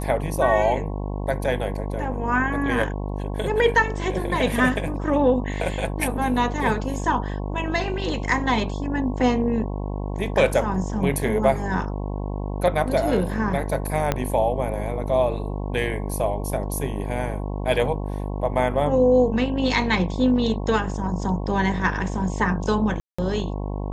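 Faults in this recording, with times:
buzz 50 Hz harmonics 22 -28 dBFS
14.12 pop -7 dBFS
23–23.18 gap 0.185 s

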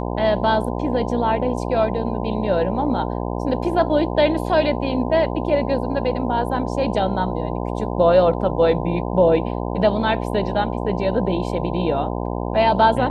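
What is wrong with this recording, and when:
buzz 60 Hz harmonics 17 -25 dBFS

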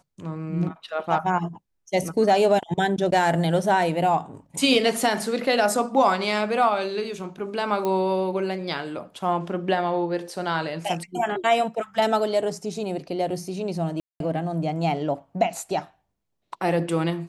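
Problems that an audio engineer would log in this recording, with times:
7.85 pop -14 dBFS
14–14.2 gap 0.202 s

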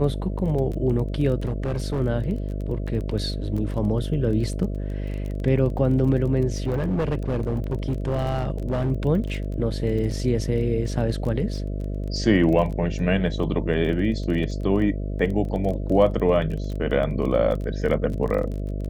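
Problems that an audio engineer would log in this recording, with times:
buzz 50 Hz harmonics 13 -28 dBFS
crackle 19/s -30 dBFS
1.45–2.01 clipped -21 dBFS
6.66–8.91 clipped -19.5 dBFS

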